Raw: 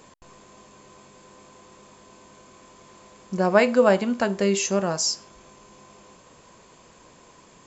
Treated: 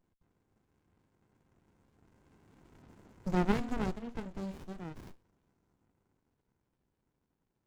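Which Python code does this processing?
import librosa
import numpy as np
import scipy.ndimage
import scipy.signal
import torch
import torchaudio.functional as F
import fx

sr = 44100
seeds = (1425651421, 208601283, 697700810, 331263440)

y = fx.spec_quant(x, sr, step_db=30)
y = fx.doppler_pass(y, sr, speed_mps=8, closest_m=2.7, pass_at_s=2.98)
y = fx.running_max(y, sr, window=65)
y = y * 10.0 ** (-3.0 / 20.0)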